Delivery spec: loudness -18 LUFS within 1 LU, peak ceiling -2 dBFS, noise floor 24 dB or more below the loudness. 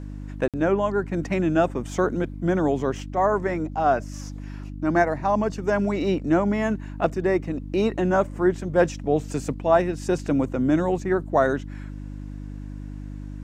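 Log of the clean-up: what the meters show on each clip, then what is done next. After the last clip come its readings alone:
dropouts 1; longest dropout 57 ms; hum 50 Hz; harmonics up to 300 Hz; hum level -32 dBFS; loudness -23.5 LUFS; peak -5.5 dBFS; loudness target -18.0 LUFS
-> interpolate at 0.48, 57 ms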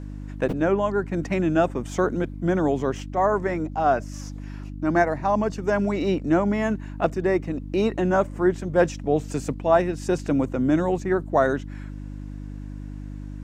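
dropouts 0; hum 50 Hz; harmonics up to 300 Hz; hum level -32 dBFS
-> de-hum 50 Hz, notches 6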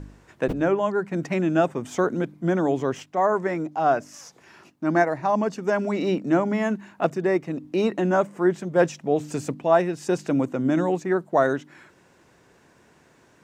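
hum none; loudness -24.0 LUFS; peak -6.0 dBFS; loudness target -18.0 LUFS
-> gain +6 dB; limiter -2 dBFS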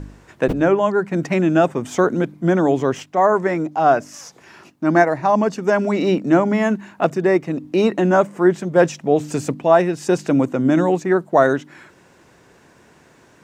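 loudness -18.0 LUFS; peak -2.0 dBFS; noise floor -52 dBFS

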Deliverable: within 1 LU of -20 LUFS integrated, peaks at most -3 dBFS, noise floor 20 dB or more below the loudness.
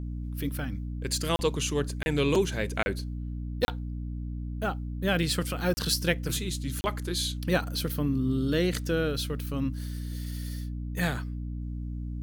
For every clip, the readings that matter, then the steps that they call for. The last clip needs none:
dropouts 6; longest dropout 30 ms; hum 60 Hz; harmonics up to 300 Hz; hum level -32 dBFS; loudness -30.0 LUFS; peak -10.5 dBFS; loudness target -20.0 LUFS
-> interpolate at 1.36/2.03/2.83/3.65/5.74/6.81, 30 ms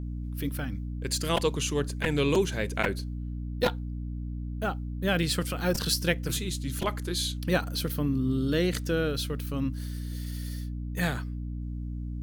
dropouts 0; hum 60 Hz; harmonics up to 300 Hz; hum level -32 dBFS
-> notches 60/120/180/240/300 Hz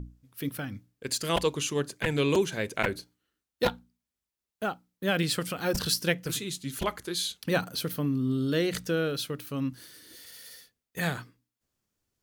hum none; loudness -30.0 LUFS; peak -10.5 dBFS; loudness target -20.0 LUFS
-> gain +10 dB; limiter -3 dBFS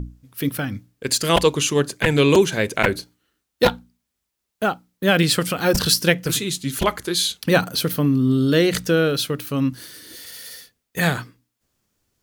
loudness -20.0 LUFS; peak -3.0 dBFS; noise floor -79 dBFS

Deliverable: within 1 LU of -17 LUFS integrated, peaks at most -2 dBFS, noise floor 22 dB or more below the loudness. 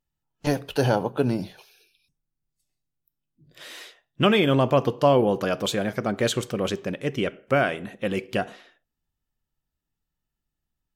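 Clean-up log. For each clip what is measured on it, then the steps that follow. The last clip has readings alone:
loudness -24.0 LUFS; peak -7.0 dBFS; loudness target -17.0 LUFS
-> gain +7 dB; limiter -2 dBFS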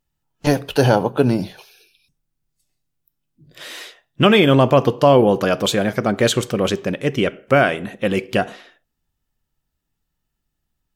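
loudness -17.5 LUFS; peak -2.0 dBFS; noise floor -77 dBFS

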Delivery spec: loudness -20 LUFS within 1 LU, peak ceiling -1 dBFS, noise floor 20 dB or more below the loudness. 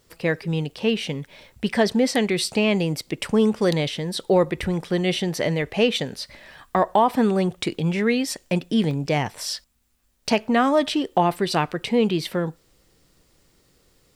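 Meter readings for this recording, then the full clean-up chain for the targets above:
dropouts 1; longest dropout 1.1 ms; loudness -22.5 LUFS; peak -6.5 dBFS; loudness target -20.0 LUFS
-> interpolate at 8.91, 1.1 ms; gain +2.5 dB

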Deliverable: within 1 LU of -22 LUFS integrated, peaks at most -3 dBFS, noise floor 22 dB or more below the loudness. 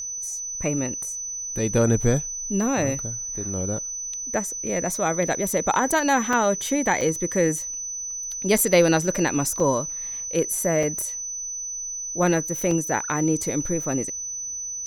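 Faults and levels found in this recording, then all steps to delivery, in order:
dropouts 6; longest dropout 3.5 ms; steady tone 6000 Hz; tone level -29 dBFS; loudness -23.5 LUFS; peak -5.0 dBFS; loudness target -22.0 LUFS
-> interpolate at 6.33/7.01/8.58/9.6/10.83/12.71, 3.5 ms; notch 6000 Hz, Q 30; gain +1.5 dB

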